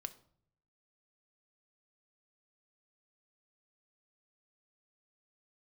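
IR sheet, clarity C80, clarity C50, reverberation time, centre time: 20.0 dB, 16.5 dB, not exponential, 4 ms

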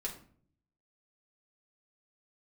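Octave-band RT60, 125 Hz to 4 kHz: 0.95, 0.80, 0.55, 0.45, 0.40, 0.35 s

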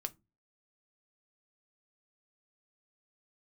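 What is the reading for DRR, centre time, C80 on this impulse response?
7.5 dB, 3 ms, 34.0 dB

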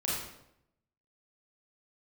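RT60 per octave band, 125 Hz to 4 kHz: 0.95, 0.90, 0.85, 0.75, 0.65, 0.60 s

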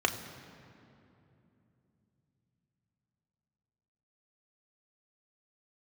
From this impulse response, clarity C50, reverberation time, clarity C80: 10.0 dB, 2.9 s, 11.0 dB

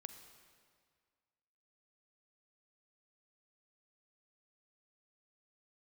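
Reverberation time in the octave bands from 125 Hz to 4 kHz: 1.9, 1.9, 1.9, 1.9, 1.8, 1.6 s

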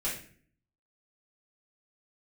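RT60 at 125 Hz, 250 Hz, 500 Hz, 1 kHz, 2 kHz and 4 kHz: 0.80, 0.75, 0.55, 0.45, 0.50, 0.40 s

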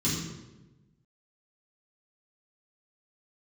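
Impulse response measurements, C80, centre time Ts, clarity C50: 4.0 dB, 62 ms, 1.5 dB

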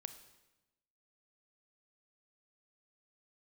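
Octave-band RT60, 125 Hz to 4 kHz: 1.2, 1.2, 1.1, 1.0, 0.95, 0.90 s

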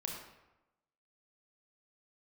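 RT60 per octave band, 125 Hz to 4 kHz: 0.95, 1.0, 1.0, 1.0, 0.85, 0.65 s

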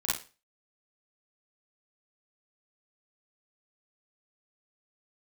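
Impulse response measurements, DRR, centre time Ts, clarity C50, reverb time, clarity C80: -8.0 dB, 48 ms, 0.5 dB, 0.35 s, 10.0 dB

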